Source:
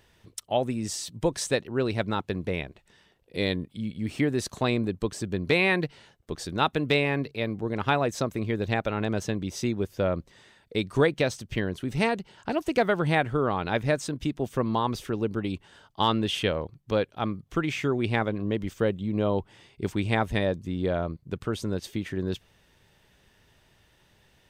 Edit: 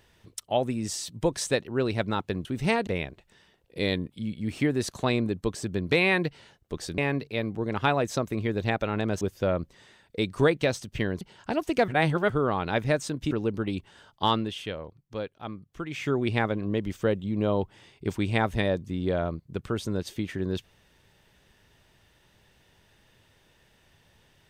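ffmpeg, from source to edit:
-filter_complex "[0:a]asplit=11[a][b][c][d][e][f][g][h][i][j][k];[a]atrim=end=2.452[l];[b]atrim=start=11.778:end=12.202[m];[c]atrim=start=2.448:end=6.562[n];[d]atrim=start=7.018:end=9.252[o];[e]atrim=start=9.778:end=11.782[p];[f]atrim=start=12.198:end=12.872[q];[g]atrim=start=12.868:end=13.292,asetpts=PTS-STARTPTS,areverse[r];[h]atrim=start=13.288:end=14.302[s];[i]atrim=start=15.078:end=16.31,asetpts=PTS-STARTPTS,afade=t=out:st=0.992:d=0.24:silence=0.375837[t];[j]atrim=start=16.31:end=17.65,asetpts=PTS-STARTPTS,volume=-8.5dB[u];[k]atrim=start=17.65,asetpts=PTS-STARTPTS,afade=t=in:d=0.24:silence=0.375837[v];[l][m]acrossfade=d=0.004:c1=hsin:c2=hsin[w];[w][n]acrossfade=d=0.004:c1=hsin:c2=hsin[x];[x][o]acrossfade=d=0.004:c1=hsin:c2=hsin[y];[y][p]acrossfade=d=0.004:c1=hsin:c2=hsin[z];[z][q]acrossfade=d=0.004:c1=hsin:c2=hsin[aa];[aa][r]acrossfade=d=0.004:c1=hsin:c2=hsin[ab];[ab][s]acrossfade=d=0.004:c1=hsin:c2=hsin[ac];[t][u][v]concat=n=3:v=0:a=1[ad];[ac][ad]acrossfade=d=0.004:c1=hsin:c2=hsin"

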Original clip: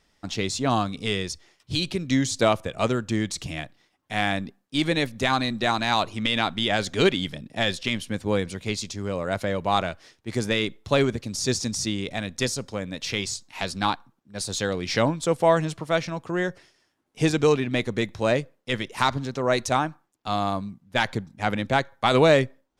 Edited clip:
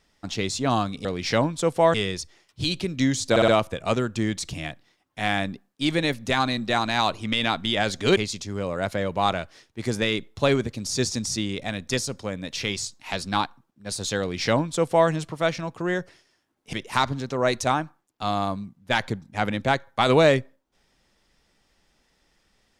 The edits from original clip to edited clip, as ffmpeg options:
-filter_complex "[0:a]asplit=8[a][b][c][d][e][f][g][h];[a]atrim=end=1.052[i];[b]atrim=start=14.688:end=15.582[j];[c]atrim=start=1.048:end=2.472[k];[d]atrim=start=2.408:end=2.472[l];[e]atrim=start=2.408:end=2.472[m];[f]atrim=start=2.408:end=7.102[n];[g]atrim=start=8.658:end=17.222[o];[h]atrim=start=18.778[p];[i][j]acrossfade=d=0.004:c1=hsin:c2=hsin[q];[q][k]acrossfade=d=0.004:c1=hsin:c2=hsin[r];[r][l]acrossfade=d=0.004:c1=hsin:c2=hsin[s];[s][m]acrossfade=d=0.004:c1=hsin:c2=hsin[t];[t][n]acrossfade=d=0.004:c1=hsin:c2=hsin[u];[u][o]acrossfade=d=0.004:c1=hsin:c2=hsin[v];[v][p]acrossfade=d=0.004:c1=hsin:c2=hsin"

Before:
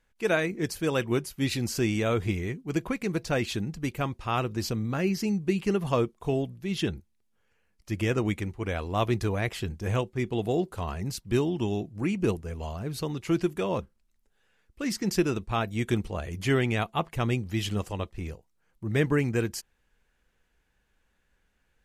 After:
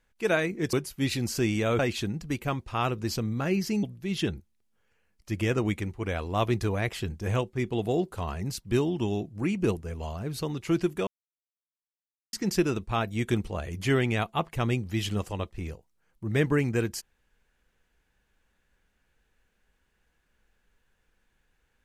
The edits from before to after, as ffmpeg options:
-filter_complex "[0:a]asplit=6[a][b][c][d][e][f];[a]atrim=end=0.732[g];[b]atrim=start=1.128:end=2.192[h];[c]atrim=start=3.318:end=5.362[i];[d]atrim=start=6.428:end=13.67,asetpts=PTS-STARTPTS,afade=t=out:st=7.238:d=0.004:c=hsin[j];[e]atrim=start=13.67:end=14.93,asetpts=PTS-STARTPTS,volume=0[k];[f]atrim=start=14.93,asetpts=PTS-STARTPTS,afade=t=in:d=0.004:c=hsin[l];[g][h]acrossfade=d=0.004:c1=hsin:c2=hsin[m];[m][i]acrossfade=d=0.004:c1=hsin:c2=hsin[n];[j][k][l]concat=n=3:v=0:a=1[o];[n][o]acrossfade=d=0.004:c1=hsin:c2=hsin"

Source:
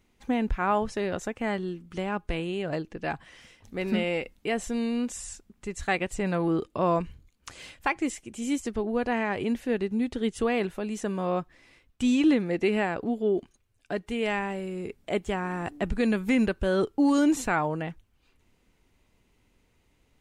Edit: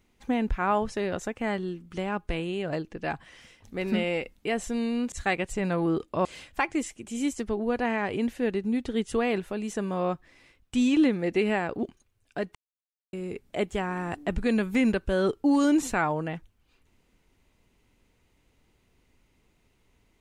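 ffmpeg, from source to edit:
-filter_complex "[0:a]asplit=6[a][b][c][d][e][f];[a]atrim=end=5.122[g];[b]atrim=start=5.738:end=6.872[h];[c]atrim=start=7.518:end=13.102[i];[d]atrim=start=13.368:end=14.09,asetpts=PTS-STARTPTS,afade=t=out:st=0.718:d=0.004:c=hsin[j];[e]atrim=start=14.09:end=14.67,asetpts=PTS-STARTPTS,volume=0[k];[f]atrim=start=14.67,asetpts=PTS-STARTPTS,afade=t=in:d=0.004:c=hsin[l];[g][h]acrossfade=d=0.004:c1=hsin:c2=hsin[m];[m][i]acrossfade=d=0.004:c1=hsin:c2=hsin[n];[j][k][l]concat=n=3:v=0:a=1[o];[n][o]acrossfade=d=0.004:c1=hsin:c2=hsin"

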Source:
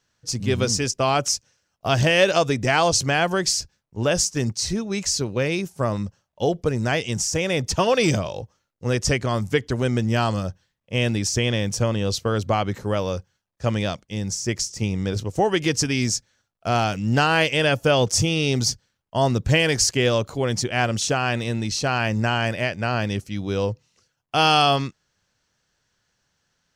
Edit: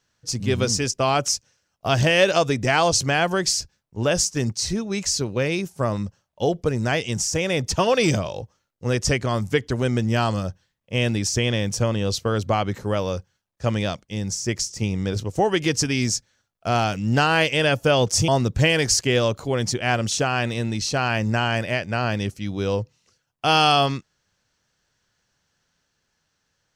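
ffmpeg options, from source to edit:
-filter_complex "[0:a]asplit=2[a][b];[a]atrim=end=18.282[c];[b]atrim=start=19.178[d];[c][d]acrossfade=d=0.004:c1=hsin:c2=hsin"

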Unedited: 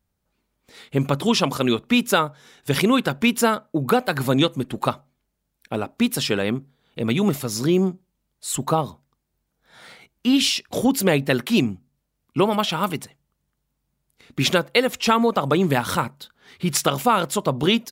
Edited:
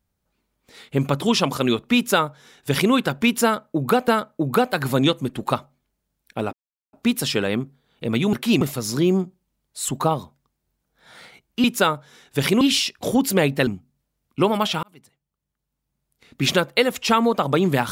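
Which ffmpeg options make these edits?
-filter_complex "[0:a]asplit=9[a][b][c][d][e][f][g][h][i];[a]atrim=end=4.082[j];[b]atrim=start=3.428:end=5.88,asetpts=PTS-STARTPTS,afade=t=out:st=2.448:d=0.004:c=hsin,apad=pad_dur=0.4[k];[c]atrim=start=5.88:end=7.282,asetpts=PTS-STARTPTS,afade=t=in:d=0.004:c=hsin[l];[d]atrim=start=11.368:end=11.652[m];[e]atrim=start=7.278:end=10.312[n];[f]atrim=start=1.958:end=2.932[o];[g]atrim=start=10.308:end=11.372[p];[h]atrim=start=11.648:end=12.81,asetpts=PTS-STARTPTS,afade=t=out:st=1.158:d=0.004:c=hsin[q];[i]atrim=start=12.81,asetpts=PTS-STARTPTS,afade=t=in:d=1.66[r];[k][l]concat=n=2:v=0:a=1[s];[j][s]acrossfade=d=0.004:c1=hsin:c2=hsin[t];[t][m]acrossfade=d=0.004:c1=hsin:c2=hsin[u];[u][n]acrossfade=d=0.004:c1=hsin:c2=hsin[v];[v][o]acrossfade=d=0.004:c1=hsin:c2=hsin[w];[w][p]acrossfade=d=0.004:c1=hsin:c2=hsin[x];[q][r]concat=n=2:v=0:a=1[y];[x][y]acrossfade=d=0.004:c1=hsin:c2=hsin"

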